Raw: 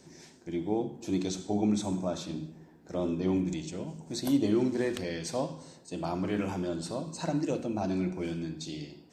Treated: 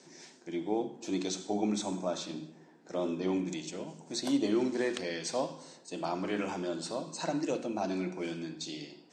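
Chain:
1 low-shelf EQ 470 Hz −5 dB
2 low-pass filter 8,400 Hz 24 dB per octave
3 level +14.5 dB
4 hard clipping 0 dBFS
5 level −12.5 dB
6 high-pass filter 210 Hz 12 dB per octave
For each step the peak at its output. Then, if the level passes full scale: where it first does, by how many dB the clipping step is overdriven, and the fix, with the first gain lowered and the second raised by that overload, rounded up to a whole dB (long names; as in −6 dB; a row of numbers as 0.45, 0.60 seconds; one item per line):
−18.5, −18.5, −4.0, −4.0, −16.5, −16.5 dBFS
no step passes full scale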